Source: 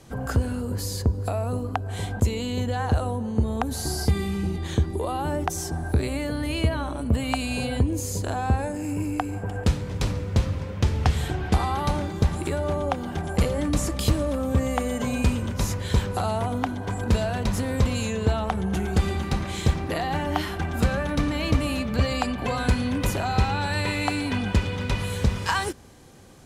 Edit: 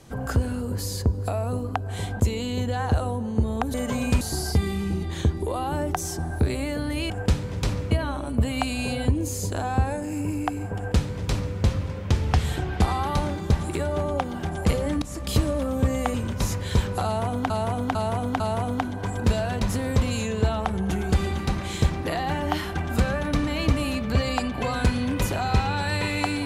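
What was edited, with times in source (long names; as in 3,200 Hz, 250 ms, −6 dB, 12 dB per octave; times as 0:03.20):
0:09.48–0:10.29: duplicate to 0:06.63
0:13.74–0:14.08: fade in, from −18.5 dB
0:14.86–0:15.33: move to 0:03.74
0:16.24–0:16.69: repeat, 4 plays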